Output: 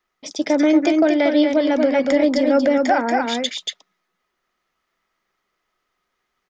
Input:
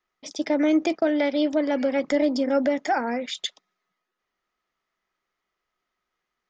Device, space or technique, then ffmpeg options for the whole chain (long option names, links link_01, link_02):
ducked delay: -filter_complex "[0:a]asplit=3[link_01][link_02][link_03];[link_02]adelay=234,volume=-2dB[link_04];[link_03]apad=whole_len=296705[link_05];[link_04][link_05]sidechaincompress=threshold=-23dB:ratio=8:attack=29:release=214[link_06];[link_01][link_06]amix=inputs=2:normalize=0,volume=5dB"